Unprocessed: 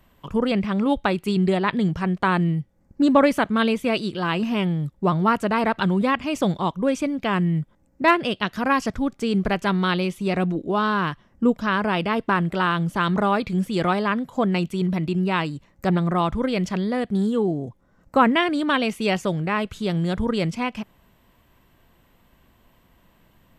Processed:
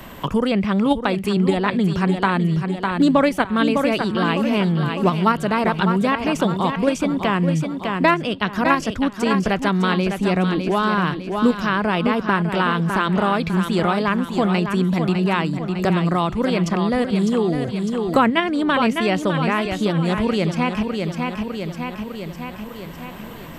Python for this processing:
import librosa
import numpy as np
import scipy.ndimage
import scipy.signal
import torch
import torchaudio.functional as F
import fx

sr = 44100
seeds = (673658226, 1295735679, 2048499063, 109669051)

p1 = fx.level_steps(x, sr, step_db=18)
p2 = x + F.gain(torch.from_numpy(p1), -0.5).numpy()
p3 = fx.echo_feedback(p2, sr, ms=604, feedback_pct=41, wet_db=-8.5)
y = fx.band_squash(p3, sr, depth_pct=70)